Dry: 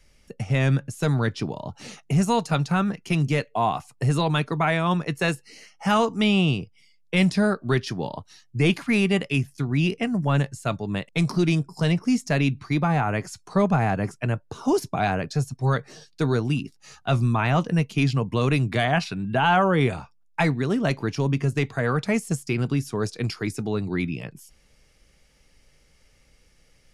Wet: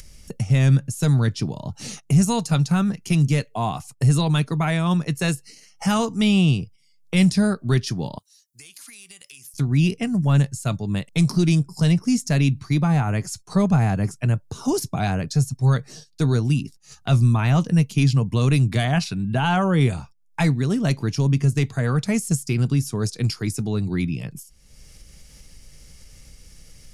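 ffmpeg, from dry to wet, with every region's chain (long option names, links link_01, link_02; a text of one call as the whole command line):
ffmpeg -i in.wav -filter_complex "[0:a]asettb=1/sr,asplit=3[link_01][link_02][link_03];[link_01]atrim=end=8.184[link_04];[link_02]atrim=start=8.18:end=9.54,asetpts=PTS-STARTPTS,afade=type=in:duration=0.004:curve=qsin,afade=type=out:start_time=1.356:duration=0.004:curve=qsin,aderivative,acompressor=threshold=-47dB:ratio=8:attack=3.2:release=140:knee=1:detection=peak,aeval=exprs='(tanh(44.7*val(0)+0.05)-tanh(0.05))/44.7':channel_layout=same[link_05];[link_03]atrim=start=9.536[link_06];[link_04][link_05]acrossfade=duration=0.004:curve1=hsin:curve2=qsin[link_07];[link_07][link_06]acrossfade=duration=0.004:curve1=qsin:curve2=hsin,agate=range=-13dB:threshold=-44dB:ratio=16:detection=peak,bass=frequency=250:gain=10,treble=frequency=4000:gain=12,acompressor=mode=upward:threshold=-23dB:ratio=2.5,volume=-3.5dB" out.wav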